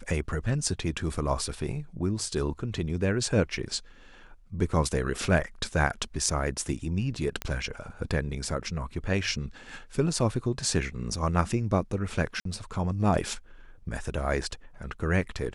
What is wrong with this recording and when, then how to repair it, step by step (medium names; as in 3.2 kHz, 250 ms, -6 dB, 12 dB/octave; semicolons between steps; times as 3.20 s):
7.42 s: pop -15 dBFS
12.40–12.45 s: dropout 53 ms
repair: de-click; interpolate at 12.40 s, 53 ms